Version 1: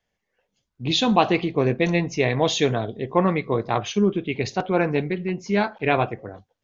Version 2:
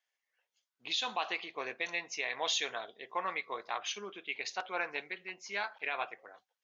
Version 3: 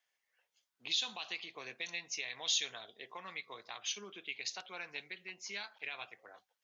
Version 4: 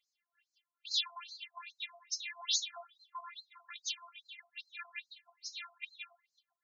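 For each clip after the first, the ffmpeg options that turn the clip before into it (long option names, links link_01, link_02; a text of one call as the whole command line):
ffmpeg -i in.wav -af "highpass=1100,alimiter=limit=-17dB:level=0:latency=1:release=139,volume=-5dB" out.wav
ffmpeg -i in.wav -filter_complex "[0:a]acrossover=split=180|3000[link_01][link_02][link_03];[link_02]acompressor=threshold=-52dB:ratio=4[link_04];[link_01][link_04][link_03]amix=inputs=3:normalize=0,volume=2.5dB" out.wav
ffmpeg -i in.wav -af "afftfilt=real='hypot(re,im)*cos(PI*b)':imag='0':win_size=512:overlap=0.75,afftfilt=real='re*between(b*sr/1024,900*pow(5800/900,0.5+0.5*sin(2*PI*2.4*pts/sr))/1.41,900*pow(5800/900,0.5+0.5*sin(2*PI*2.4*pts/sr))*1.41)':imag='im*between(b*sr/1024,900*pow(5800/900,0.5+0.5*sin(2*PI*2.4*pts/sr))/1.41,900*pow(5800/900,0.5+0.5*sin(2*PI*2.4*pts/sr))*1.41)':win_size=1024:overlap=0.75,volume=7dB" out.wav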